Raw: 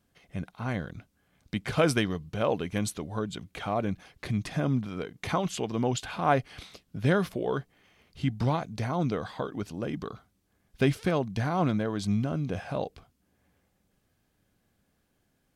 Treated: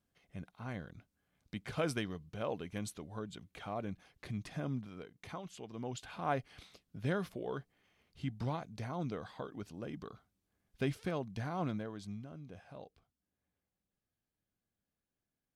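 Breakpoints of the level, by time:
0:04.72 −11 dB
0:05.49 −18 dB
0:06.20 −10.5 dB
0:11.73 −10.5 dB
0:12.23 −19 dB

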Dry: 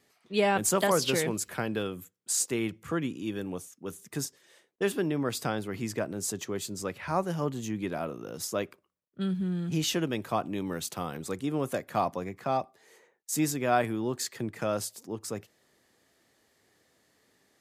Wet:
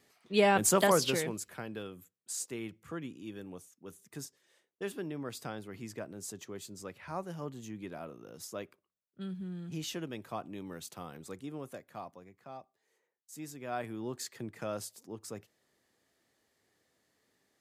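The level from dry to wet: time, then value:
0:00.89 0 dB
0:01.54 −10 dB
0:11.36 −10 dB
0:12.22 −18.5 dB
0:13.31 −18.5 dB
0:14.05 −7.5 dB

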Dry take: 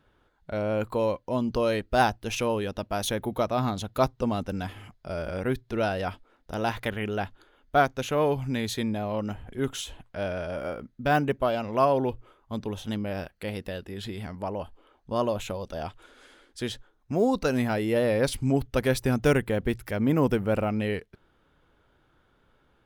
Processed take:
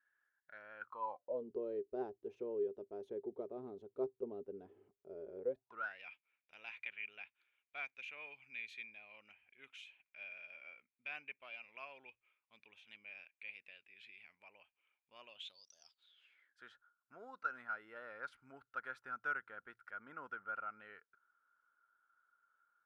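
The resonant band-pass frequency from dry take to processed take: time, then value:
resonant band-pass, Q 15
0:00.77 1,700 Hz
0:01.48 400 Hz
0:05.41 400 Hz
0:06.00 2,400 Hz
0:15.27 2,400 Hz
0:15.76 6,500 Hz
0:16.62 1,400 Hz

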